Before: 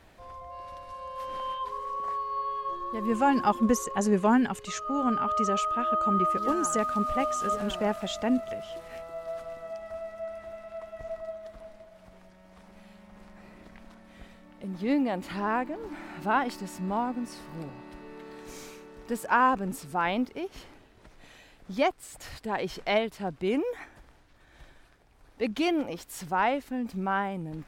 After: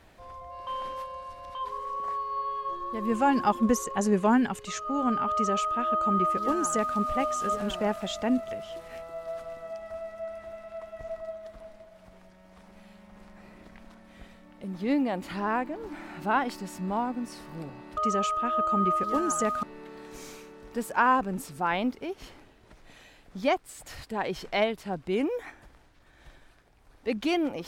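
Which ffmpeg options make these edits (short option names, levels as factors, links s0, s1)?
-filter_complex "[0:a]asplit=5[s0][s1][s2][s3][s4];[s0]atrim=end=0.672[s5];[s1]atrim=start=0.668:end=1.552,asetpts=PTS-STARTPTS,areverse[s6];[s2]atrim=start=1.548:end=17.972[s7];[s3]atrim=start=5.308:end=6.972[s8];[s4]atrim=start=17.968[s9];[s5][s6]acrossfade=d=0.004:c1=hsin:c2=hsin[s10];[s10][s7]acrossfade=d=0.004:c1=hsin:c2=hsin[s11];[s11][s8]acrossfade=d=0.004:c1=hsin:c2=hsin[s12];[s12][s9]acrossfade=d=0.004:c1=hsin:c2=hsin"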